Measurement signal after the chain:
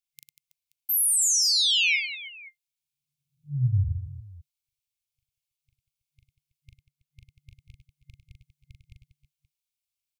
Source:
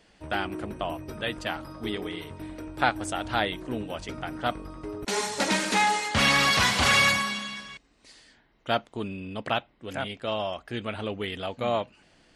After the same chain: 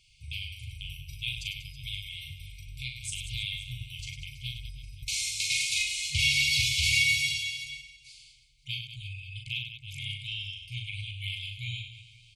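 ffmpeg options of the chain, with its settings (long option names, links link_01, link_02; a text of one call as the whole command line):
ffmpeg -i in.wav -af "aecho=1:1:40|100|190|325|527.5:0.631|0.398|0.251|0.158|0.1,alimiter=limit=-12.5dB:level=0:latency=1:release=214,afftfilt=real='re*(1-between(b*sr/4096,150,2100))':imag='im*(1-between(b*sr/4096,150,2100))':win_size=4096:overlap=0.75" out.wav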